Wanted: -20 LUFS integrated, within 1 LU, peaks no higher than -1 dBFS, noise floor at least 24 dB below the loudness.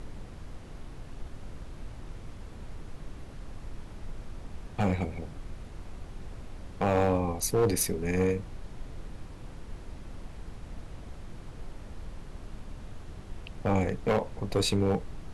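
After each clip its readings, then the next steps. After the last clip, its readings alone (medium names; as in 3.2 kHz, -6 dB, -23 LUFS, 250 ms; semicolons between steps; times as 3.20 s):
clipped samples 0.6%; clipping level -19.0 dBFS; noise floor -45 dBFS; noise floor target -53 dBFS; loudness -29.0 LUFS; peak level -19.0 dBFS; loudness target -20.0 LUFS
-> clip repair -19 dBFS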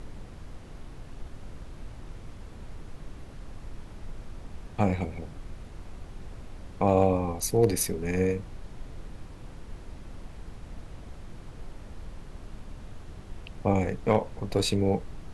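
clipped samples 0.0%; noise floor -45 dBFS; noise floor target -52 dBFS
-> noise print and reduce 7 dB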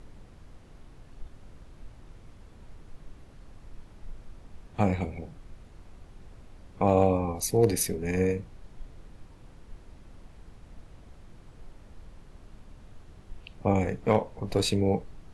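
noise floor -52 dBFS; loudness -27.0 LUFS; peak level -10.0 dBFS; loudness target -20.0 LUFS
-> trim +7 dB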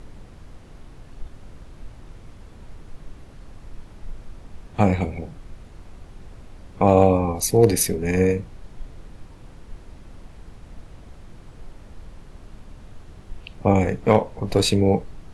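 loudness -20.0 LUFS; peak level -3.0 dBFS; noise floor -45 dBFS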